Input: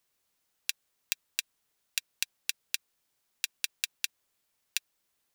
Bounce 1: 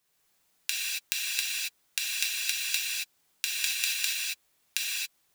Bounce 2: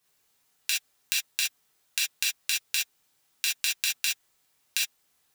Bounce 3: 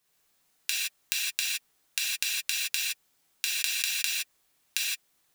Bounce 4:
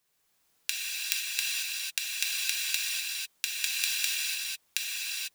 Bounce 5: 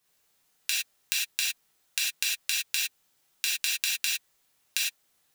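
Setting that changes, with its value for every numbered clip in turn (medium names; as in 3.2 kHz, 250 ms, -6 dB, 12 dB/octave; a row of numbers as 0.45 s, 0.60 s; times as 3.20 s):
gated-style reverb, gate: 300 ms, 90 ms, 190 ms, 520 ms, 130 ms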